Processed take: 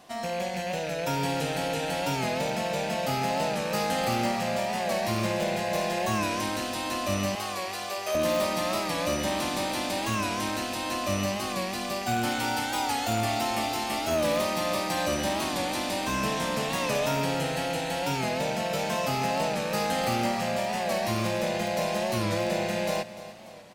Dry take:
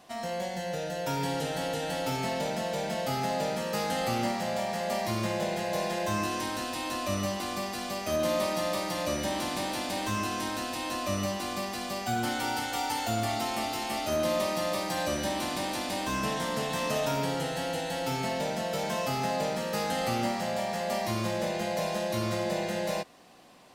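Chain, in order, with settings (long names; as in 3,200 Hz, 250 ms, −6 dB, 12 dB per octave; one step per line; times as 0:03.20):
loose part that buzzes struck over −41 dBFS, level −31 dBFS
0:07.35–0:08.15: elliptic high-pass filter 390 Hz
repeating echo 296 ms, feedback 54%, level −15.5 dB
in parallel at −10 dB: wrap-around overflow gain 20 dB
on the sum: wow of a warped record 45 rpm, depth 100 cents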